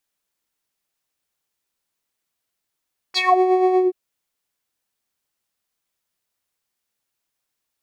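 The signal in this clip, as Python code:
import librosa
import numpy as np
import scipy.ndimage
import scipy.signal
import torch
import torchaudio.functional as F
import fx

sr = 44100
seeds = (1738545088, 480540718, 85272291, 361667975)

y = fx.sub_patch_tremolo(sr, seeds[0], note=78, wave='triangle', wave2='saw', interval_st=19, detune_cents=16, level2_db=-9.0, sub_db=-1.0, noise_db=-28.5, kind='bandpass', cutoff_hz=330.0, q=6.6, env_oct=4.0, env_decay_s=0.22, env_sustain_pct=15, attack_ms=36.0, decay_s=0.05, sustain_db=-4, release_s=0.17, note_s=0.61, lfo_hz=8.3, tremolo_db=5.0)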